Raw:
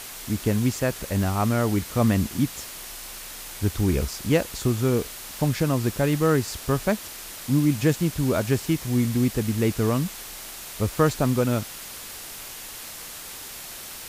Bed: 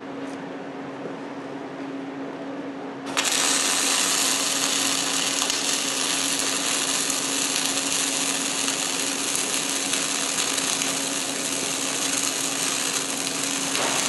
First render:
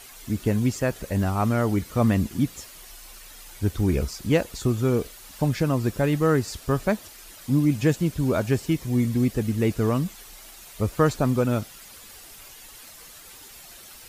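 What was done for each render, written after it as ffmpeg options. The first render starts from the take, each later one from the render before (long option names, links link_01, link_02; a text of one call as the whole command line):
ffmpeg -i in.wav -af "afftdn=noise_reduction=10:noise_floor=-39" out.wav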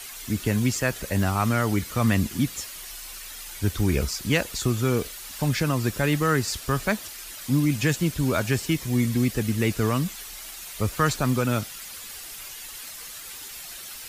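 ffmpeg -i in.wav -filter_complex "[0:a]acrossover=split=170|1200[link_01][link_02][link_03];[link_02]alimiter=limit=-18.5dB:level=0:latency=1[link_04];[link_03]acontrast=68[link_05];[link_01][link_04][link_05]amix=inputs=3:normalize=0" out.wav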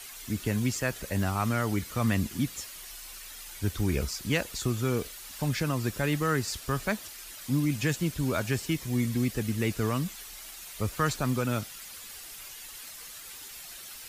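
ffmpeg -i in.wav -af "volume=-5dB" out.wav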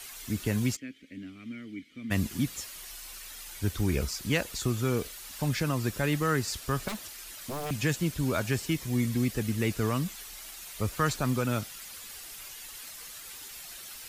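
ffmpeg -i in.wav -filter_complex "[0:a]asplit=3[link_01][link_02][link_03];[link_01]afade=type=out:start_time=0.75:duration=0.02[link_04];[link_02]asplit=3[link_05][link_06][link_07];[link_05]bandpass=frequency=270:width_type=q:width=8,volume=0dB[link_08];[link_06]bandpass=frequency=2290:width_type=q:width=8,volume=-6dB[link_09];[link_07]bandpass=frequency=3010:width_type=q:width=8,volume=-9dB[link_10];[link_08][link_09][link_10]amix=inputs=3:normalize=0,afade=type=in:start_time=0.75:duration=0.02,afade=type=out:start_time=2.1:duration=0.02[link_11];[link_03]afade=type=in:start_time=2.1:duration=0.02[link_12];[link_04][link_11][link_12]amix=inputs=3:normalize=0,asettb=1/sr,asplit=3[link_13][link_14][link_15];[link_13]atrim=end=6.884[link_16];[link_14]atrim=start=6.88:end=7.71,asetpts=PTS-STARTPTS,afade=type=in:duration=0.004:curve=qsin,afade=type=out:start_time=0.826:duration=0.004:curve=qsin,aeval=exprs='0.0335*(abs(mod(val(0)/0.0335+3,4)-2)-1)':channel_layout=same[link_17];[link_15]atrim=start=7.706[link_18];[link_16][link_17]acrossfade=duration=0.004:curve1=hsin:curve2=qsin[link_19];[link_19][link_18]acrossfade=duration=0.004:curve1=qsin:curve2=hsin" out.wav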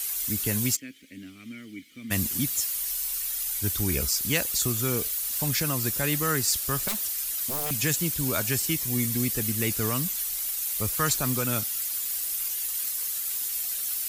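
ffmpeg -i in.wav -af "aemphasis=mode=production:type=75fm" out.wav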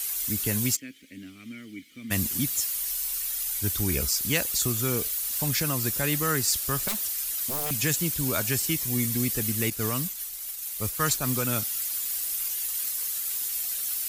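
ffmpeg -i in.wav -filter_complex "[0:a]asettb=1/sr,asplit=3[link_01][link_02][link_03];[link_01]atrim=end=9.704[link_04];[link_02]atrim=start=9.7:end=11.28,asetpts=PTS-STARTPTS,afade=type=in:duration=0.004:curve=qsin,afade=type=out:start_time=1.576:duration=0.004:curve=qsin,agate=range=-33dB:threshold=-26dB:ratio=3:release=100:detection=peak[link_05];[link_03]atrim=start=11.276[link_06];[link_04][link_05]acrossfade=duration=0.004:curve1=hsin:curve2=qsin[link_07];[link_07][link_06]acrossfade=duration=0.004:curve1=qsin:curve2=hsin" out.wav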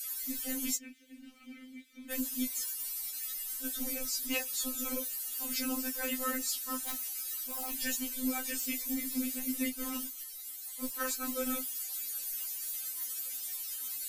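ffmpeg -i in.wav -af "afftfilt=real='hypot(re,im)*cos(2*PI*random(0))':imag='hypot(re,im)*sin(2*PI*random(1))':win_size=512:overlap=0.75,afftfilt=real='re*3.46*eq(mod(b,12),0)':imag='im*3.46*eq(mod(b,12),0)':win_size=2048:overlap=0.75" out.wav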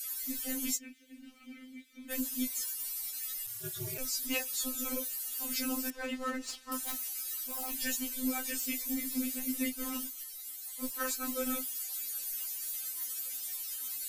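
ffmpeg -i in.wav -filter_complex "[0:a]asplit=3[link_01][link_02][link_03];[link_01]afade=type=out:start_time=3.46:duration=0.02[link_04];[link_02]aeval=exprs='val(0)*sin(2*PI*110*n/s)':channel_layout=same,afade=type=in:start_time=3.46:duration=0.02,afade=type=out:start_time=3.97:duration=0.02[link_05];[link_03]afade=type=in:start_time=3.97:duration=0.02[link_06];[link_04][link_05][link_06]amix=inputs=3:normalize=0,asettb=1/sr,asplit=3[link_07][link_08][link_09];[link_07]atrim=end=5.904[link_10];[link_08]atrim=start=5.9:end=6.72,asetpts=PTS-STARTPTS,afade=type=in:duration=0.004:curve=qsin,afade=type=out:start_time=0.816:duration=0.004:curve=qsin,adynamicsmooth=sensitivity=6:basefreq=2800[link_11];[link_09]atrim=start=6.716[link_12];[link_10][link_11]acrossfade=duration=0.004:curve1=hsin:curve2=qsin[link_13];[link_13][link_12]acrossfade=duration=0.004:curve1=qsin:curve2=hsin" out.wav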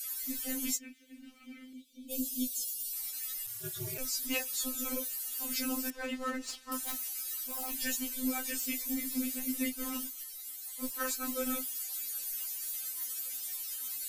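ffmpeg -i in.wav -filter_complex "[0:a]asettb=1/sr,asplit=3[link_01][link_02][link_03];[link_01]atrim=end=1.734[link_04];[link_02]atrim=start=1.73:end=2.93,asetpts=PTS-STARTPTS,afade=type=in:duration=0.004:curve=qsin,afade=type=out:start_time=1.196:duration=0.004:curve=qsin,asuperstop=centerf=1400:order=8:qfactor=0.64[link_05];[link_03]atrim=start=2.926[link_06];[link_04][link_05]acrossfade=duration=0.004:curve1=hsin:curve2=qsin[link_07];[link_07][link_06]acrossfade=duration=0.004:curve1=qsin:curve2=hsin" out.wav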